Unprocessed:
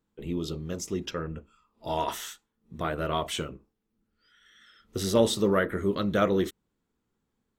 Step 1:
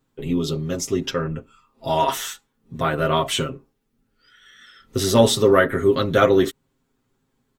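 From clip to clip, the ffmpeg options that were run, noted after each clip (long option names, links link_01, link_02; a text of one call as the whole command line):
ffmpeg -i in.wav -af "aecho=1:1:7.5:0.79,volume=7dB" out.wav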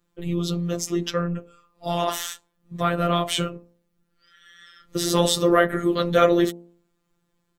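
ffmpeg -i in.wav -af "bandreject=frequency=63.51:width_type=h:width=4,bandreject=frequency=127.02:width_type=h:width=4,bandreject=frequency=190.53:width_type=h:width=4,bandreject=frequency=254.04:width_type=h:width=4,bandreject=frequency=317.55:width_type=h:width=4,bandreject=frequency=381.06:width_type=h:width=4,bandreject=frequency=444.57:width_type=h:width=4,bandreject=frequency=508.08:width_type=h:width=4,bandreject=frequency=571.59:width_type=h:width=4,bandreject=frequency=635.1:width_type=h:width=4,bandreject=frequency=698.61:width_type=h:width=4,bandreject=frequency=762.12:width_type=h:width=4,bandreject=frequency=825.63:width_type=h:width=4,bandreject=frequency=889.14:width_type=h:width=4,bandreject=frequency=952.65:width_type=h:width=4,bandreject=frequency=1016.16:width_type=h:width=4,afftfilt=real='hypot(re,im)*cos(PI*b)':imag='0':win_size=1024:overlap=0.75,volume=2dB" out.wav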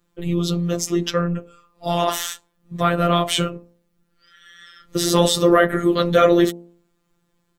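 ffmpeg -i in.wav -af "apsyclip=6dB,volume=-2dB" out.wav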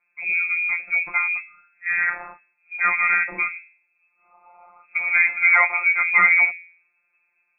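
ffmpeg -i in.wav -af "lowpass=frequency=2200:width_type=q:width=0.5098,lowpass=frequency=2200:width_type=q:width=0.6013,lowpass=frequency=2200:width_type=q:width=0.9,lowpass=frequency=2200:width_type=q:width=2.563,afreqshift=-2600,volume=-1.5dB" out.wav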